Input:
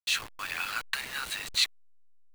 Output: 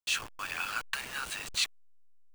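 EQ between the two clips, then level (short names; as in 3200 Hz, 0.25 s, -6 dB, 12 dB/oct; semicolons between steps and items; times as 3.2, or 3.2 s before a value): thirty-one-band EQ 2000 Hz -6 dB, 4000 Hz -7 dB, 12500 Hz -7 dB; 0.0 dB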